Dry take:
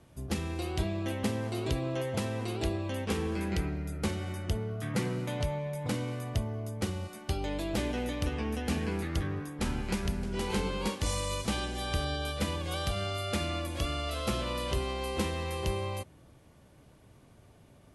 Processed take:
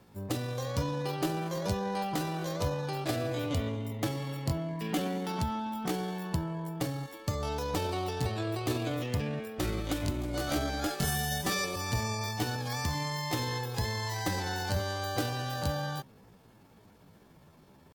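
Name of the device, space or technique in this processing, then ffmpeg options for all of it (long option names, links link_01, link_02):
chipmunk voice: -filter_complex "[0:a]asetrate=66075,aresample=44100,atempo=0.66742,asettb=1/sr,asplit=3[link_01][link_02][link_03];[link_01]atrim=end=10.904[link_04];[link_02]atrim=start=10.9:end=11.76,asetpts=PTS-STARTPTS,afade=type=in:duration=0.004:curve=qsin,afade=type=out:start_time=0.856:duration=0.004:curve=qsin,aecho=1:1:5.1:0.96,atrim=end_sample=37926[link_05];[link_03]atrim=start=11.756[link_06];[link_04][link_05]acrossfade=duration=0.004:curve1=hsin:curve2=qsin[link_07];[link_07][link_06]acrossfade=duration=0.004:curve1=qsin:curve2=hsin"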